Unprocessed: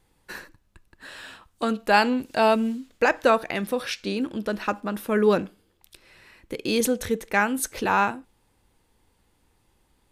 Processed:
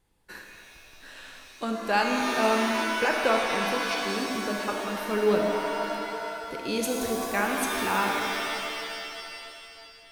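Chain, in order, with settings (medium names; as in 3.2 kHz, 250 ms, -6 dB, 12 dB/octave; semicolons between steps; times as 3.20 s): pitch-shifted reverb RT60 2.6 s, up +7 st, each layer -2 dB, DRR 1.5 dB; trim -6.5 dB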